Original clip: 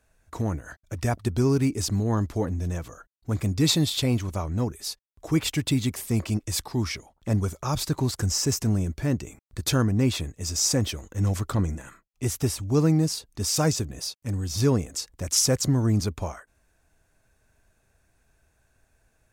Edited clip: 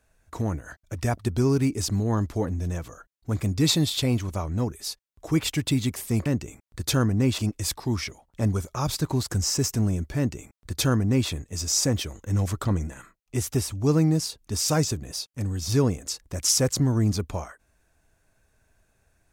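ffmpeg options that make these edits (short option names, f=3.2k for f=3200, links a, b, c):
-filter_complex "[0:a]asplit=3[a][b][c];[a]atrim=end=6.262[d];[b]atrim=start=9.048:end=10.172[e];[c]atrim=start=6.258[f];[d][e]acrossfade=d=0.004:c1=hsin:c2=hsin[g];[g][f]acrossfade=d=0.004:c1=hsin:c2=hsin"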